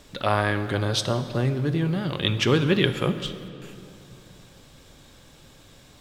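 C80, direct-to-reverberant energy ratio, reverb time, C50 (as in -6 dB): 12.0 dB, 10.0 dB, 2.7 s, 11.5 dB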